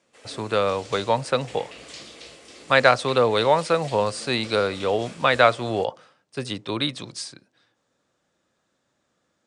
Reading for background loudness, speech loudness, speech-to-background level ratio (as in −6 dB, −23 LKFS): −42.0 LKFS, −22.5 LKFS, 19.5 dB